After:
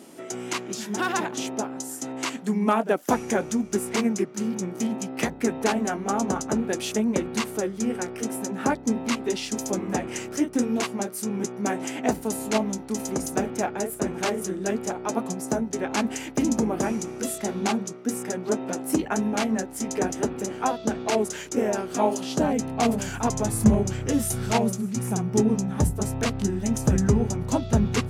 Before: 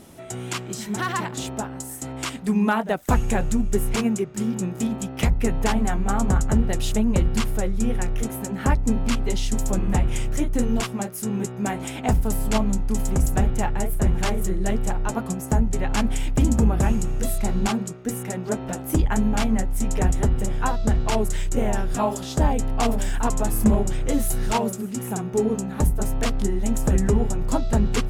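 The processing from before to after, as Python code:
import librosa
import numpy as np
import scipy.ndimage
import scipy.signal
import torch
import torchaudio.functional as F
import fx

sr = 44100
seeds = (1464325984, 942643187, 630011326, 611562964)

y = fx.formant_shift(x, sr, semitones=-2)
y = fx.filter_sweep_highpass(y, sr, from_hz=290.0, to_hz=99.0, start_s=22.12, end_s=23.35, q=1.4)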